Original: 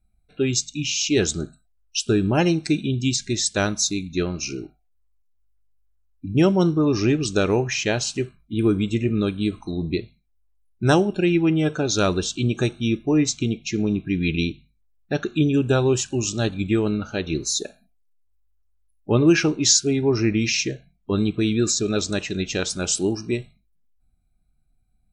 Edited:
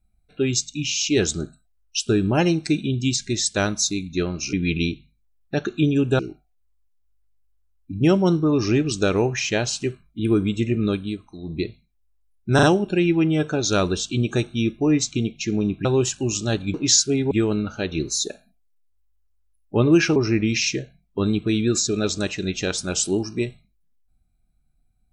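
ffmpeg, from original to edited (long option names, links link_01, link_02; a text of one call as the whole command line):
ffmpeg -i in.wav -filter_complex "[0:a]asplit=11[link_01][link_02][link_03][link_04][link_05][link_06][link_07][link_08][link_09][link_10][link_11];[link_01]atrim=end=4.532[link_12];[link_02]atrim=start=14.108:end=15.772[link_13];[link_03]atrim=start=4.528:end=9.54,asetpts=PTS-STARTPTS,afade=type=out:start_time=4.752:duration=0.26:silence=0.316228[link_14];[link_04]atrim=start=9.54:end=9.74,asetpts=PTS-STARTPTS,volume=-10dB[link_15];[link_05]atrim=start=9.74:end=10.932,asetpts=PTS-STARTPTS,afade=type=in:duration=0.26:silence=0.316228[link_16];[link_06]atrim=start=10.888:end=10.932[link_17];[link_07]atrim=start=10.888:end=14.112[link_18];[link_08]atrim=start=15.768:end=16.662[link_19];[link_09]atrim=start=19.508:end=20.082[link_20];[link_10]atrim=start=16.658:end=19.512[link_21];[link_11]atrim=start=20.078[link_22];[link_12][link_13]acrossfade=duration=0.004:curve1=hsin:curve2=hsin[link_23];[link_14][link_15][link_16]concat=n=3:v=0:a=1[link_24];[link_23][link_24]acrossfade=duration=0.004:curve1=hsin:curve2=hsin[link_25];[link_25][link_17]acrossfade=duration=0.004:curve1=hsin:curve2=hsin[link_26];[link_26][link_18]acrossfade=duration=0.004:curve1=hsin:curve2=hsin[link_27];[link_27][link_19]acrossfade=duration=0.004:curve1=hsin:curve2=hsin[link_28];[link_28][link_20]acrossfade=duration=0.004:curve1=hsin:curve2=hsin[link_29];[link_29][link_21]acrossfade=duration=0.004:curve1=hsin:curve2=hsin[link_30];[link_30][link_22]acrossfade=duration=0.004:curve1=hsin:curve2=hsin" out.wav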